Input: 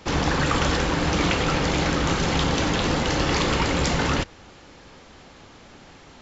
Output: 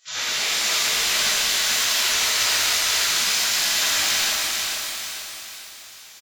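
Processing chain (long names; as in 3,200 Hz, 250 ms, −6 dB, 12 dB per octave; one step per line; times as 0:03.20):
gate on every frequency bin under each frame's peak −20 dB weak
repeating echo 446 ms, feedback 44%, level −5 dB
reverb with rising layers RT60 2.4 s, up +12 semitones, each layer −8 dB, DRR −11.5 dB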